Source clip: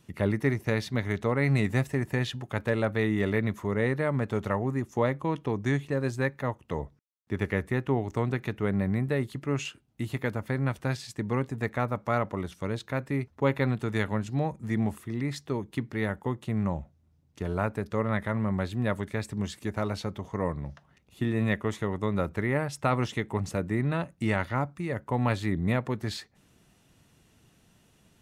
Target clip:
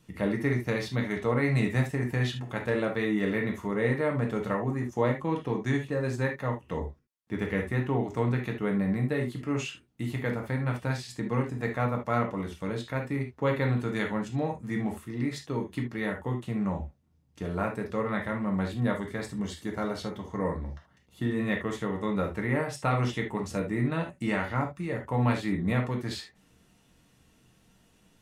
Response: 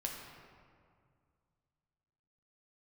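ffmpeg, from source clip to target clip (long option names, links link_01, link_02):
-filter_complex "[0:a]asettb=1/sr,asplit=3[link_01][link_02][link_03];[link_01]atrim=end=18.754[link_04];[link_02]atrim=start=18.75:end=21.39,asetpts=PTS-STARTPTS,afade=type=in:duration=0.004:curve=qsin,afade=type=out:start_time=2.636:duration=0.004:curve=qsin,bandreject=frequency=2500:width=7.9[link_05];[link_03]atrim=start=21.386[link_06];[link_04][link_05]acrossfade=duration=0.004:curve1=hsin:curve2=qsin[link_07];[link_07][link_06]acrossfade=duration=0.004:curve1=qsin:curve2=hsin[link_08];[1:a]atrim=start_sample=2205,atrim=end_sample=6174,asetrate=74970,aresample=44100[link_09];[link_08][link_09]afir=irnorm=-1:irlink=0,volume=4.5dB"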